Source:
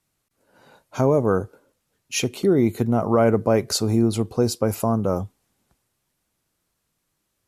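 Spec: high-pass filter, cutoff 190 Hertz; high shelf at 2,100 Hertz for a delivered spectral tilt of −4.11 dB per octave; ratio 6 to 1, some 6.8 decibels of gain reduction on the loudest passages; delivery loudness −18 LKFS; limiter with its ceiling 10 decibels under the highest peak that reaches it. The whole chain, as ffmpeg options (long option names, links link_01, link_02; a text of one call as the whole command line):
ffmpeg -i in.wav -af "highpass=190,highshelf=frequency=2100:gain=6,acompressor=threshold=-21dB:ratio=6,volume=13dB,alimiter=limit=-7.5dB:level=0:latency=1" out.wav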